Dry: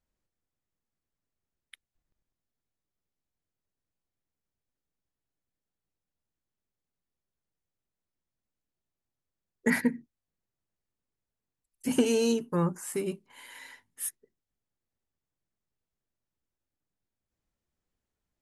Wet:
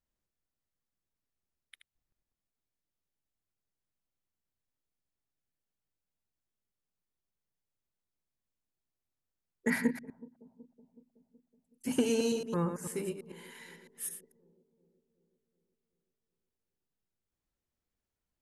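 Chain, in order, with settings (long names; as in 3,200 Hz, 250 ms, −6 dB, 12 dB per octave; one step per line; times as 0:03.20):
delay that plays each chunk backwards 111 ms, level −7.5 dB
on a send: bucket-brigade delay 373 ms, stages 2,048, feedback 57%, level −20.5 dB
on the sum: level −4.5 dB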